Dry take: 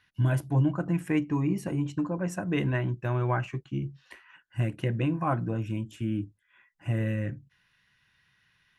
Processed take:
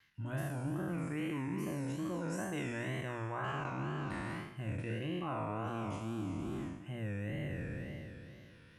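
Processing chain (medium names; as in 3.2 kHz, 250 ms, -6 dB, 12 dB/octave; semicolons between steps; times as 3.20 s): spectral sustain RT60 2.72 s; reverse; compression 6:1, threshold -36 dBFS, peak gain reduction 17 dB; reverse; wow and flutter 130 cents; hum notches 60/120 Hz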